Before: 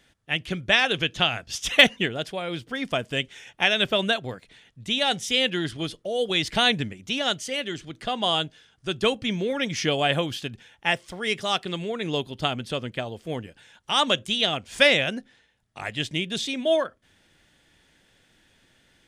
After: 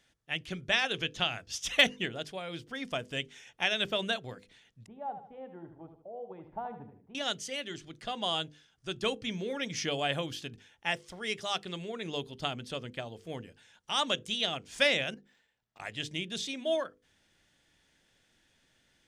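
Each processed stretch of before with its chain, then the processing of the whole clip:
4.86–7.15 s: four-pole ladder low-pass 970 Hz, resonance 65% + feedback delay 76 ms, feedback 40%, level -9 dB
15.14–15.80 s: bass shelf 210 Hz -7.5 dB + compression 12:1, threshold -45 dBFS + decimation joined by straight lines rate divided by 4×
whole clip: peaking EQ 5.9 kHz +4 dB 0.77 oct; hum notches 50/100/150/200/250/300/350/400/450/500 Hz; trim -8.5 dB

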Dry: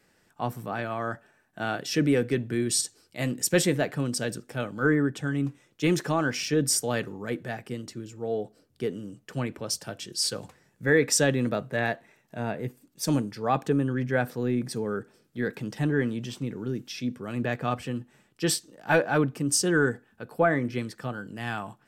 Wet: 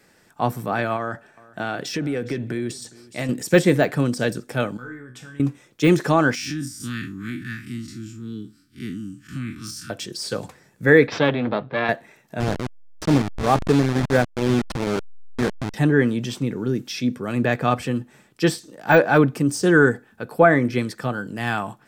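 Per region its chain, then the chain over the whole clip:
0.96–3.29 s: treble shelf 11 kHz -8 dB + compression, threshold -30 dBFS + delay 411 ms -22 dB
4.77–5.40 s: peaking EQ 440 Hz -7 dB 2.8 oct + compression 3:1, threshold -36 dBFS + feedback comb 62 Hz, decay 0.39 s, mix 90%
6.35–9.90 s: spectral blur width 91 ms + Chebyshev band-stop 300–1300 Hz, order 3 + compression, threshold -32 dBFS
11.07–11.89 s: partial rectifier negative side -12 dB + elliptic band-pass 100–3800 Hz + band-stop 1.9 kHz, Q 27
12.40–15.74 s: send-on-delta sampling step -25.5 dBFS + distance through air 53 m
whole clip: band-stop 2.9 kHz, Q 18; de-esser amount 90%; bass shelf 68 Hz -6 dB; trim +8.5 dB

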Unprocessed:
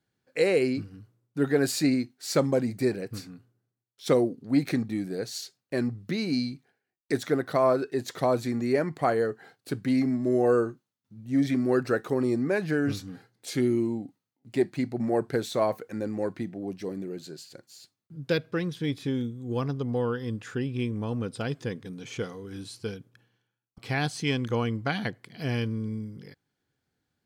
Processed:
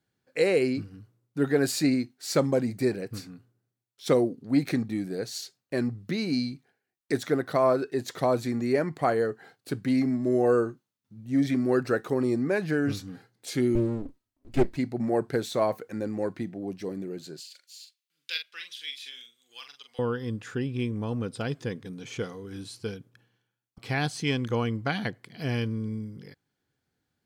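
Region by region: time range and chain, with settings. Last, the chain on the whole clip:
13.75–14.77 s: comb filter that takes the minimum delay 3.1 ms + bass shelf 180 Hz +12 dB + loudspeaker Doppler distortion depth 0.22 ms
17.40–19.99 s: resonant high-pass 2.8 kHz, resonance Q 1.8 + doubling 43 ms -7 dB
whole clip: none

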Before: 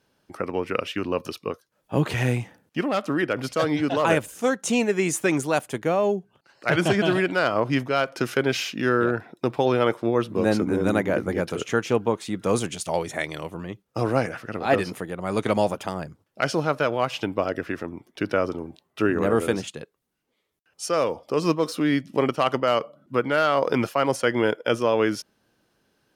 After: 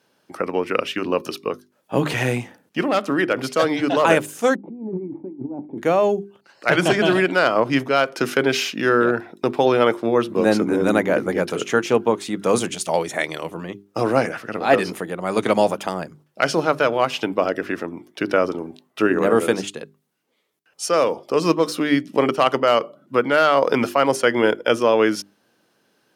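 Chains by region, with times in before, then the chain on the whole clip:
4.55–5.78 s: cascade formant filter u + bass shelf 370 Hz +10.5 dB + compressor with a negative ratio -34 dBFS
whole clip: high-pass 170 Hz 12 dB/octave; hum notches 50/100/150/200/250/300/350/400 Hz; trim +5 dB

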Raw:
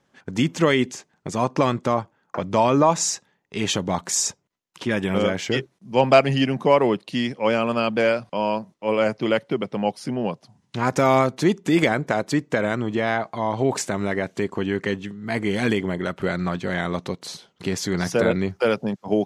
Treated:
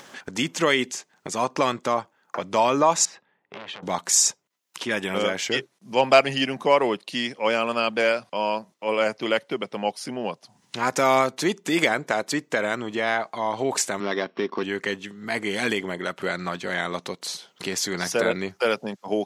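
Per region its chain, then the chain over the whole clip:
3.05–3.83 s: distance through air 450 m + compression 2:1, threshold -40 dBFS + transformer saturation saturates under 1.9 kHz
14.00–14.63 s: sorted samples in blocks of 8 samples + cabinet simulation 130–3300 Hz, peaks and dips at 240 Hz +6 dB, 360 Hz +5 dB, 1.1 kHz +7 dB
whole clip: high-pass 280 Hz 6 dB/octave; tilt EQ +1.5 dB/octave; upward compressor, threshold -30 dBFS

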